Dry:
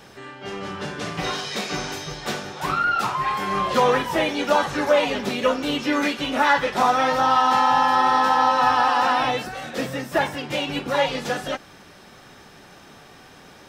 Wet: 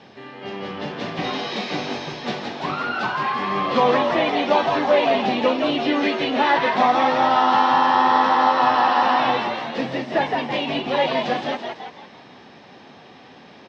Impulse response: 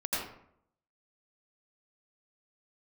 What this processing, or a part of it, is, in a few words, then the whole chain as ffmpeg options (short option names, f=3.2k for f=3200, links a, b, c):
frequency-shifting delay pedal into a guitar cabinet: -filter_complex "[0:a]asplit=7[a][b][c][d][e][f][g];[b]adelay=167,afreqshift=94,volume=-4.5dB[h];[c]adelay=334,afreqshift=188,volume=-11.1dB[i];[d]adelay=501,afreqshift=282,volume=-17.6dB[j];[e]adelay=668,afreqshift=376,volume=-24.2dB[k];[f]adelay=835,afreqshift=470,volume=-30.7dB[l];[g]adelay=1002,afreqshift=564,volume=-37.3dB[m];[a][h][i][j][k][l][m]amix=inputs=7:normalize=0,highpass=110,equalizer=f=240:t=q:w=4:g=5,equalizer=f=740:t=q:w=4:g=3,equalizer=f=1.4k:t=q:w=4:g=-7,lowpass=f=4.6k:w=0.5412,lowpass=f=4.6k:w=1.3066"